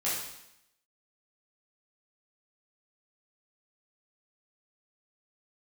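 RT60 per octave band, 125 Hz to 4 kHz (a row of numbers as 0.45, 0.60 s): 0.80, 0.85, 0.80, 0.85, 0.85, 0.85 s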